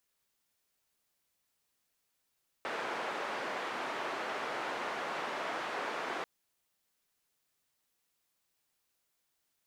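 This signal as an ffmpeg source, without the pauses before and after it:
-f lavfi -i "anoisesrc=c=white:d=3.59:r=44100:seed=1,highpass=f=370,lowpass=f=1400,volume=-19.9dB"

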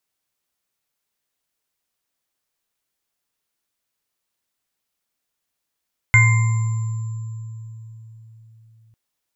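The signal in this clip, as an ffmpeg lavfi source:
-f lavfi -i "aevalsrc='0.282*pow(10,-3*t/4.19)*sin(2*PI*112*t)+0.0631*pow(10,-3*t/2.02)*sin(2*PI*1030*t)+0.075*pow(10,-3*t/0.25)*sin(2*PI*1500*t)+0.355*pow(10,-3*t/0.81)*sin(2*PI*2100*t)+0.0422*pow(10,-3*t/2.45)*sin(2*PI*7300*t)':d=2.8:s=44100"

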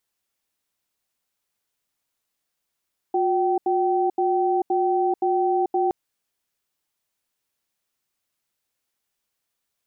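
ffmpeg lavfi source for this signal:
-f lavfi -i "aevalsrc='0.0891*(sin(2*PI*360*t)+sin(2*PI*770*t))*clip(min(mod(t,0.52),0.44-mod(t,0.52))/0.005,0,1)':d=2.77:s=44100"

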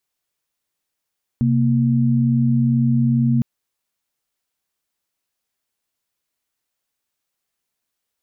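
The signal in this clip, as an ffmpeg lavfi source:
-f lavfi -i "aevalsrc='0.15*(sin(2*PI*130.81*t)+sin(2*PI*233.08*t))':d=2.01:s=44100"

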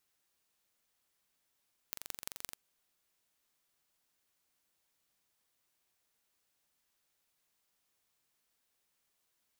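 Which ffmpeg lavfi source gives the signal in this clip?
-f lavfi -i "aevalsrc='0.299*eq(mod(n,1901),0)*(0.5+0.5*eq(mod(n,7604),0))':d=0.61:s=44100"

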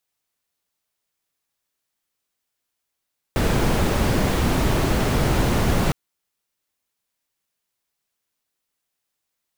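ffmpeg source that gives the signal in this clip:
-f lavfi -i "anoisesrc=c=brown:a=0.525:d=2.56:r=44100:seed=1"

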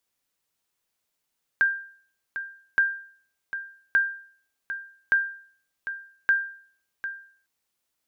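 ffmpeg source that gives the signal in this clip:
-f lavfi -i "aevalsrc='0.211*(sin(2*PI*1590*mod(t,1.17))*exp(-6.91*mod(t,1.17)/0.51)+0.266*sin(2*PI*1590*max(mod(t,1.17)-0.75,0))*exp(-6.91*max(mod(t,1.17)-0.75,0)/0.51))':d=5.85:s=44100"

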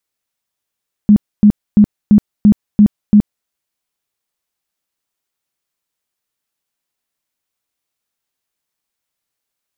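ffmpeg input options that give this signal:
-f lavfi -i "aevalsrc='0.708*sin(2*PI*208*mod(t,0.34))*lt(mod(t,0.34),15/208)':d=2.38:s=44100"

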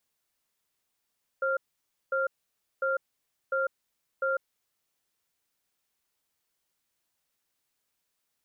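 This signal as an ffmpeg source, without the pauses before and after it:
-f lavfi -i "aevalsrc='0.0422*(sin(2*PI*535*t)+sin(2*PI*1390*t))*clip(min(mod(t,0.7),0.15-mod(t,0.7))/0.005,0,1)':d=3.19:s=44100"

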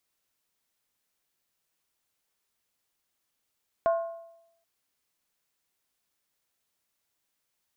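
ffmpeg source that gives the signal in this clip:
-f lavfi -i "aevalsrc='0.112*pow(10,-3*t/0.84)*sin(2*PI*669*t)+0.0376*pow(10,-3*t/0.665)*sin(2*PI*1066.4*t)+0.0126*pow(10,-3*t/0.575)*sin(2*PI*1429*t)+0.00422*pow(10,-3*t/0.554)*sin(2*PI*1536*t)+0.00141*pow(10,-3*t/0.516)*sin(2*PI*1774.9*t)':d=0.78:s=44100"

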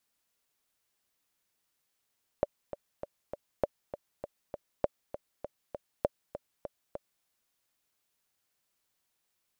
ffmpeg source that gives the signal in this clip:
-f lavfi -i "aevalsrc='pow(10,(-12.5-12*gte(mod(t,4*60/199),60/199))/20)*sin(2*PI*580*mod(t,60/199))*exp(-6.91*mod(t,60/199)/0.03)':d=4.82:s=44100"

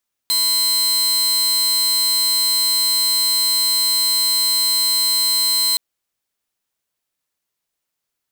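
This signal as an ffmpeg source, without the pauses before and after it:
-f lavfi -i "aevalsrc='0.237*(2*mod(4100*t,1)-1)':d=5.47:s=44100"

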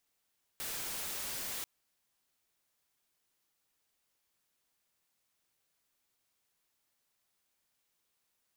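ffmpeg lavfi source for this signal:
-f lavfi -i "anoisesrc=c=white:a=0.0183:d=1.04:r=44100:seed=1"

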